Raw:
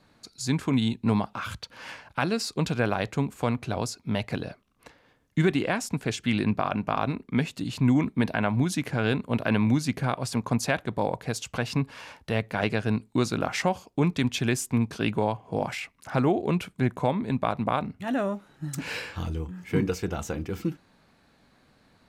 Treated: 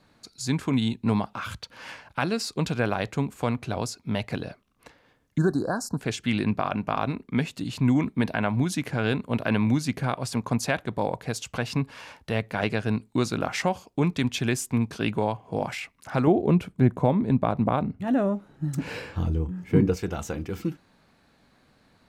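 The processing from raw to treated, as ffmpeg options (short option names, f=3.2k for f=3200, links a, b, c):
-filter_complex "[0:a]asettb=1/sr,asplit=3[a][b][c];[a]atrim=end=5.384[d];[b]atrim=start=5.38:end=5.99,asetpts=PTS-STARTPTS,afade=t=in:d=0.004:c=qsin,afade=t=out:st=0.606:d=0.004:c=qsin,asuperstop=centerf=2600:order=20:qfactor=1.1[e];[c]atrim=start=5.986[f];[d][e]acrossfade=d=0.004:c1=hsin:c2=qsin[g];[g][f]acrossfade=d=0.004:c1=qsin:c2=hsin,asettb=1/sr,asplit=3[h][i][j];[h]atrim=end=16.274[k];[i]atrim=start=16.27:end=19.97,asetpts=PTS-STARTPTS,afade=t=in:d=0.004:c=qsin,afade=t=out:st=3.696:d=0.004:c=qsin,tiltshelf=f=910:g=6[l];[j]atrim=start=19.966[m];[k][l]acrossfade=d=0.004:c1=hsin:c2=qsin[n];[n][m]acrossfade=d=0.004:c1=qsin:c2=hsin"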